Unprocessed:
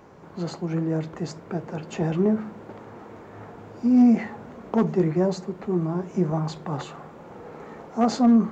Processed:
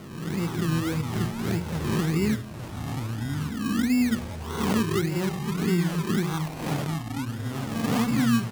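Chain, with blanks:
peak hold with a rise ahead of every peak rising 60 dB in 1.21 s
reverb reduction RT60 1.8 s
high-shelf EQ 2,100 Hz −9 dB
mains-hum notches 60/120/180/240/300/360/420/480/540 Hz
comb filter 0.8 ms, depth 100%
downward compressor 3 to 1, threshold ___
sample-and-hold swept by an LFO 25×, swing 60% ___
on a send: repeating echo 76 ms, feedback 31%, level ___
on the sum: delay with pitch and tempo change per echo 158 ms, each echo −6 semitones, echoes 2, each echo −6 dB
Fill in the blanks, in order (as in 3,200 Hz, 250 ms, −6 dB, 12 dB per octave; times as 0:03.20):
−23 dBFS, 1.7 Hz, −22 dB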